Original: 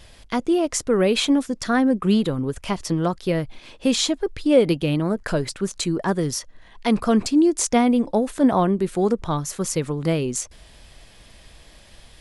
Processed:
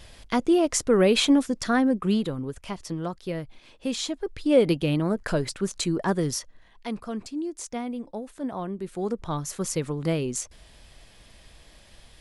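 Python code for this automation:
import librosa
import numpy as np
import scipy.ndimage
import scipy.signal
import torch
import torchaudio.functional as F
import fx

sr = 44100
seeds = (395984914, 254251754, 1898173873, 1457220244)

y = fx.gain(x, sr, db=fx.line((1.44, -0.5), (2.72, -9.0), (4.02, -9.0), (4.62, -2.5), (6.35, -2.5), (7.03, -14.5), (8.53, -14.5), (9.48, -4.0)))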